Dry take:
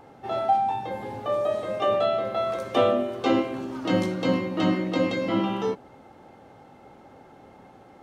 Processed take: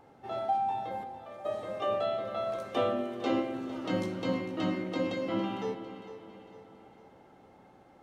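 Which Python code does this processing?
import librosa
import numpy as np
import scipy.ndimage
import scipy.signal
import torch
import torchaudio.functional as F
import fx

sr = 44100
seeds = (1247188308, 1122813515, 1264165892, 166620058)

y = fx.stiff_resonator(x, sr, f0_hz=74.0, decay_s=0.33, stiffness=0.03, at=(1.03, 1.44), fade=0.02)
y = fx.echo_feedback(y, sr, ms=454, feedback_pct=47, wet_db=-14)
y = fx.rev_spring(y, sr, rt60_s=2.9, pass_ms=(57,), chirp_ms=75, drr_db=12.0)
y = y * 10.0 ** (-8.0 / 20.0)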